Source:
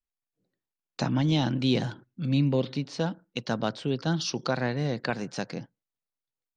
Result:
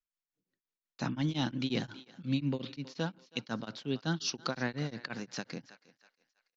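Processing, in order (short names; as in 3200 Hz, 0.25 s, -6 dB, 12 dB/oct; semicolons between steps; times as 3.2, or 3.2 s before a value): EQ curve 130 Hz 0 dB, 260 Hz +4 dB, 450 Hz 0 dB, 670 Hz -1 dB, 1300 Hz +5 dB; on a send: thinning echo 0.321 s, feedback 44%, high-pass 550 Hz, level -17.5 dB; on the sum: downsampling 16000 Hz; beating tremolo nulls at 5.6 Hz; gain -6.5 dB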